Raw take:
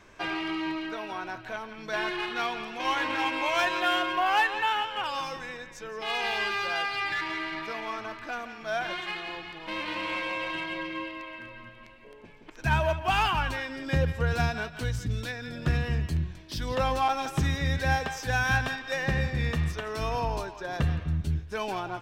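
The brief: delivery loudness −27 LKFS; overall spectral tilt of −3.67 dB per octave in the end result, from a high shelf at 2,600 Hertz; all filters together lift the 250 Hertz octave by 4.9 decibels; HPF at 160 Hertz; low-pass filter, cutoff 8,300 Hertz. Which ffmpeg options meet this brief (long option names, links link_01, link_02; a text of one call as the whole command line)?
ffmpeg -i in.wav -af "highpass=160,lowpass=8300,equalizer=frequency=250:width_type=o:gain=8.5,highshelf=frequency=2600:gain=-4.5,volume=3dB" out.wav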